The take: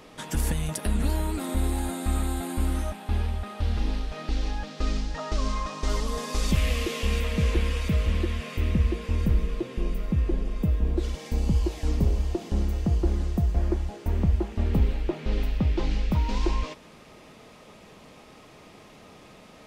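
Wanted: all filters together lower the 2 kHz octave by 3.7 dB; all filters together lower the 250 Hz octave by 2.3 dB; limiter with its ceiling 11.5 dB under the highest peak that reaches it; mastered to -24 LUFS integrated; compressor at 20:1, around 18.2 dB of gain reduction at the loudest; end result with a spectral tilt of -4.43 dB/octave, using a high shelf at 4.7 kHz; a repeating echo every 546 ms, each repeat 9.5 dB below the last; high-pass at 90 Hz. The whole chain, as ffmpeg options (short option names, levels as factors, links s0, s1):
-af "highpass=90,equalizer=f=250:t=o:g=-3,equalizer=f=2000:t=o:g=-6,highshelf=f=4700:g=6,acompressor=threshold=0.00891:ratio=20,alimiter=level_in=5.31:limit=0.0631:level=0:latency=1,volume=0.188,aecho=1:1:546|1092|1638|2184:0.335|0.111|0.0365|0.012,volume=15.8"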